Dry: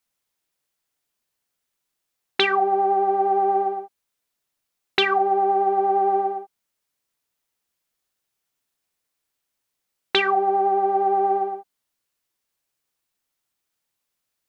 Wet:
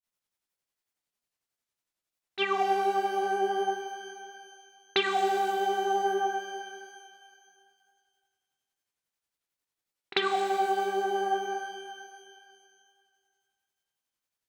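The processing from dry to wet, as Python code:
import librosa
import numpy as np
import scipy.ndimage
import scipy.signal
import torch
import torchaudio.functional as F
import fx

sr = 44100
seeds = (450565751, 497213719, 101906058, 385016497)

y = fx.granulator(x, sr, seeds[0], grain_ms=143.0, per_s=11.0, spray_ms=25.0, spread_st=0)
y = fx.rev_shimmer(y, sr, seeds[1], rt60_s=2.1, semitones=12, shimmer_db=-8, drr_db=5.0)
y = y * librosa.db_to_amplitude(-6.0)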